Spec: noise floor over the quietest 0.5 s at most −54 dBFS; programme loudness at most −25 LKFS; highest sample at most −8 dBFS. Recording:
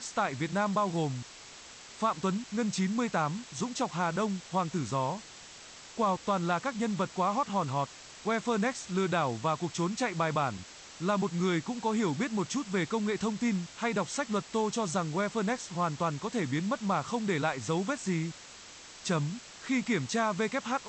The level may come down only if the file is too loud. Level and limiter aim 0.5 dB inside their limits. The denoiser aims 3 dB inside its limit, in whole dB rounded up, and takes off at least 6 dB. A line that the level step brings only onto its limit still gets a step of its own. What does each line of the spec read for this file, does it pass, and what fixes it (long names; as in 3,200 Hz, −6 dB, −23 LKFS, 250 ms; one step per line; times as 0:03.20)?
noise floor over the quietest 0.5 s −49 dBFS: out of spec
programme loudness −31.5 LKFS: in spec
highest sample −16.5 dBFS: in spec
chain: broadband denoise 8 dB, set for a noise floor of −49 dBFS